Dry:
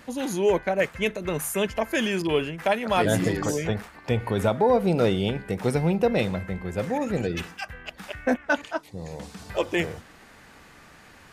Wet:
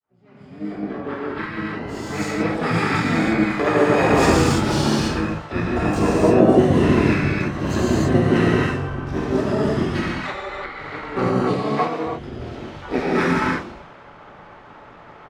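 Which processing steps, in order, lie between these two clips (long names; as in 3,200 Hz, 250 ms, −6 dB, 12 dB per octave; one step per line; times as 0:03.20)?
fade in at the beginning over 2.49 s
reverb whose tail is shaped and stops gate 270 ms flat, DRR −7.5 dB
gain on a spectral selection 0:08.51–0:08.72, 850–4,100 Hz −8 dB
low-pass that shuts in the quiet parts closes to 2,600 Hz, open at −13 dBFS
wrong playback speed 45 rpm record played at 33 rpm
low-shelf EQ 150 Hz −11 dB
pitch-shifted copies added −7 semitones −2 dB, +7 semitones −17 dB, +12 semitones −16 dB
level −1 dB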